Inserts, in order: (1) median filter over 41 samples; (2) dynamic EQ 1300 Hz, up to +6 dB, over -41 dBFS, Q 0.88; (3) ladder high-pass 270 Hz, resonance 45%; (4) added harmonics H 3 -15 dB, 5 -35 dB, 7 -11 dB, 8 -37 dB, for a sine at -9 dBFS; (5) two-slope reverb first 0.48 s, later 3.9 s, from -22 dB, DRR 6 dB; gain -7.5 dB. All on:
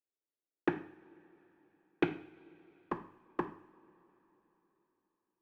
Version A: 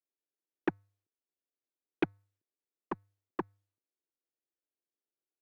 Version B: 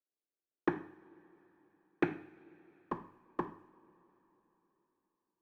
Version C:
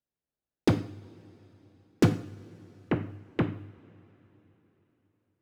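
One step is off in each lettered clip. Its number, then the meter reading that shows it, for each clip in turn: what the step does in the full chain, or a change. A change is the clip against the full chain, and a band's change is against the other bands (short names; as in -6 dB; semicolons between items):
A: 5, momentary loudness spread change -11 LU; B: 2, crest factor change -3.0 dB; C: 3, 125 Hz band +13.0 dB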